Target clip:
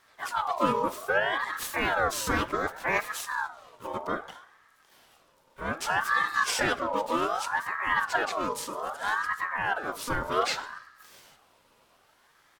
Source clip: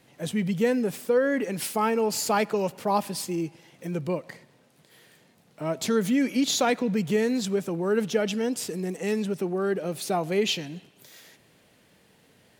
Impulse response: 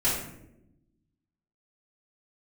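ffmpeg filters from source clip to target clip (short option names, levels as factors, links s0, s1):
-filter_complex "[0:a]asplit=3[s0][s1][s2];[s1]asetrate=22050,aresample=44100,atempo=2,volume=0.501[s3];[s2]asetrate=52444,aresample=44100,atempo=0.840896,volume=0.631[s4];[s0][s3][s4]amix=inputs=3:normalize=0,asplit=2[s5][s6];[1:a]atrim=start_sample=2205[s7];[s6][s7]afir=irnorm=-1:irlink=0,volume=0.0596[s8];[s5][s8]amix=inputs=2:normalize=0,aeval=exprs='val(0)*sin(2*PI*1100*n/s+1100*0.35/0.64*sin(2*PI*0.64*n/s))':c=same,volume=0.708"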